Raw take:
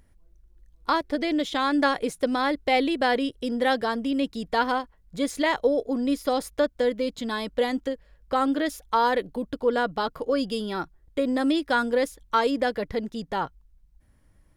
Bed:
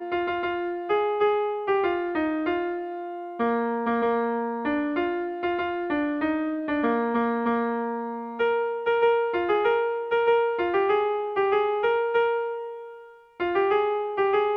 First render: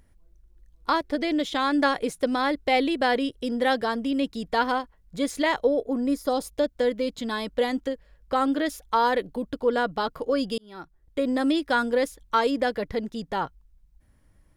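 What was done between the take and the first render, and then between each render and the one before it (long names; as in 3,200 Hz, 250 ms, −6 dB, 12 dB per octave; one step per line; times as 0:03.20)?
0:05.63–0:06.71: parametric band 8,000 Hz → 1,100 Hz −11 dB
0:10.58–0:11.25: fade in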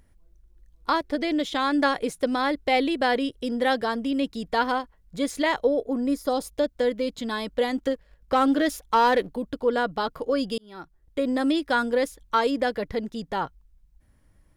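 0:07.78–0:09.29: leveller curve on the samples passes 1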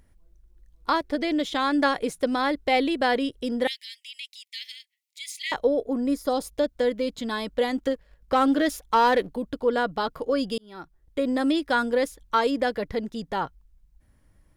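0:03.67–0:05.52: Butterworth high-pass 2,000 Hz 96 dB per octave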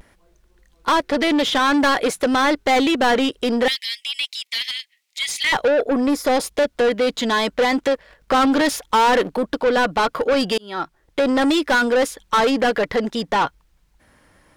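mid-hump overdrive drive 25 dB, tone 3,900 Hz, clips at −9.5 dBFS
pitch vibrato 0.54 Hz 41 cents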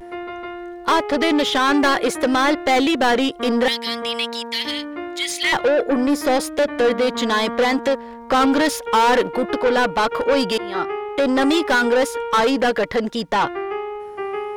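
mix in bed −4 dB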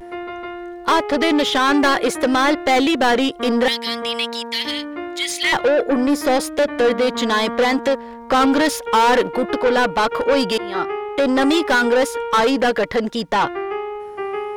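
level +1 dB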